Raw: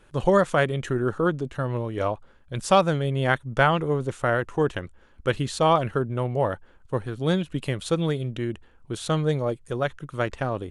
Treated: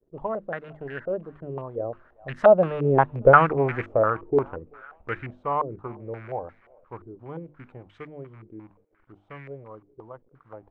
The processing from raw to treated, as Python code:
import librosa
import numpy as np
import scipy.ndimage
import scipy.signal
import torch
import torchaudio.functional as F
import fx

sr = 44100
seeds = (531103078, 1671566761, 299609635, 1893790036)

p1 = fx.rattle_buzz(x, sr, strikes_db=-28.0, level_db=-22.0)
p2 = fx.doppler_pass(p1, sr, speed_mps=36, closest_m=19.0, pass_at_s=3.21)
p3 = fx.hum_notches(p2, sr, base_hz=50, count=7)
p4 = fx.quant_companded(p3, sr, bits=6)
p5 = p4 + fx.echo_thinned(p4, sr, ms=386, feedback_pct=70, hz=630.0, wet_db=-23.5, dry=0)
p6 = fx.filter_held_lowpass(p5, sr, hz=5.7, low_hz=400.0, high_hz=1800.0)
y = F.gain(torch.from_numpy(p6), 1.0).numpy()